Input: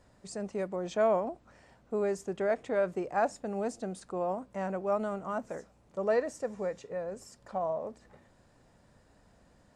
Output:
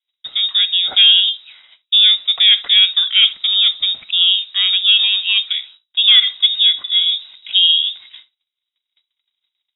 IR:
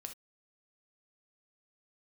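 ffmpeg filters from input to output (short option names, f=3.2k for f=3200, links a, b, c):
-filter_complex "[0:a]asettb=1/sr,asplit=3[a][b][c];[a]atrim=end=6.334[d];[b]atrim=start=6.33:end=7.82,asetpts=PTS-STARTPTS,afade=t=in:d=0.004:c=qsin,afade=t=out:st=1.486:d=0.004:c=qsin,tiltshelf=f=970:g=4[e];[c]atrim=start=7.816[f];[d][e]acrossfade=d=0.004:c1=hsin:c2=qsin[g];[g][f]acrossfade=d=0.004:c1=qsin:c2=hsin,agate=range=-41dB:threshold=-57dB:ratio=16:detection=peak,asplit=2[h][i];[1:a]atrim=start_sample=2205[j];[i][j]afir=irnorm=-1:irlink=0,volume=-2.5dB[k];[h][k]amix=inputs=2:normalize=0,lowpass=f=3.3k:t=q:w=0.5098,lowpass=f=3.3k:t=q:w=0.6013,lowpass=f=3.3k:t=q:w=0.9,lowpass=f=3.3k:t=q:w=2.563,afreqshift=-3900,alimiter=level_in=16.5dB:limit=-1dB:release=50:level=0:latency=1,volume=-1dB"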